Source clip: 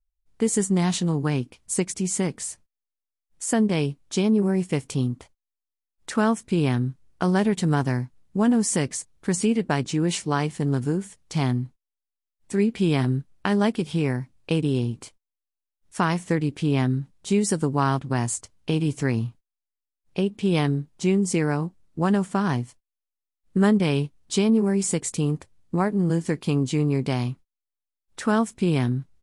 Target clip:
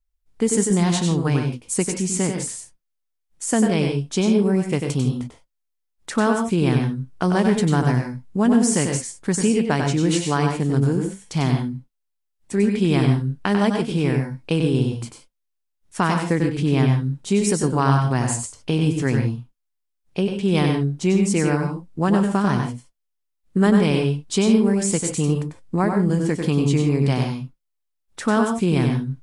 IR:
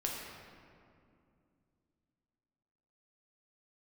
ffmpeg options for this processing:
-filter_complex "[0:a]asplit=2[s0][s1];[1:a]atrim=start_sample=2205,atrim=end_sample=3528,adelay=95[s2];[s1][s2]afir=irnorm=-1:irlink=0,volume=0.596[s3];[s0][s3]amix=inputs=2:normalize=0,volume=1.26"

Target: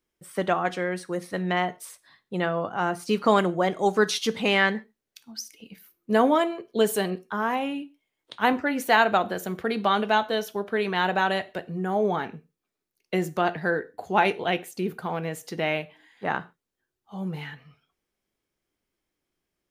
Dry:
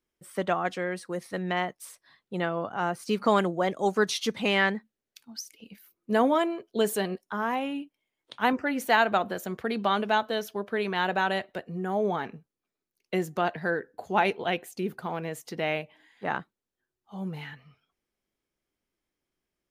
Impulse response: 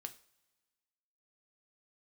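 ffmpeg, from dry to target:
-filter_complex "[0:a]asplit=2[s0][s1];[1:a]atrim=start_sample=2205,atrim=end_sample=6615[s2];[s1][s2]afir=irnorm=-1:irlink=0,volume=2[s3];[s0][s3]amix=inputs=2:normalize=0,volume=0.631"

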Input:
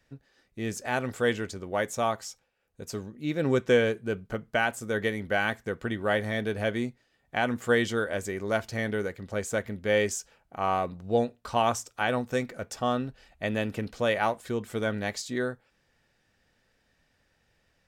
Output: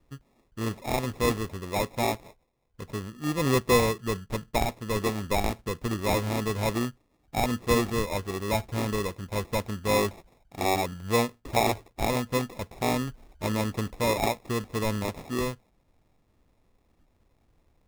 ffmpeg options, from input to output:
-af "lowpass=f=4600:w=0.5412,lowpass=f=4600:w=1.3066,lowshelf=f=85:g=11.5,acrusher=samples=29:mix=1:aa=0.000001"

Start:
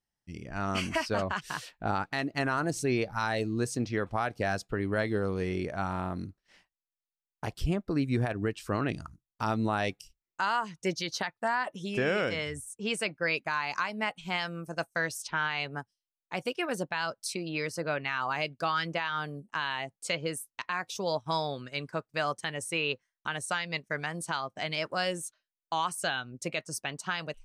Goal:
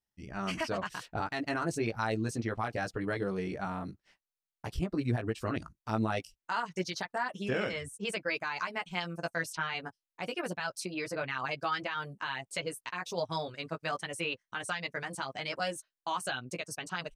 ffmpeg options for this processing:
-af "flanger=delay=15:depth=3.1:speed=0.16,atempo=1.6"

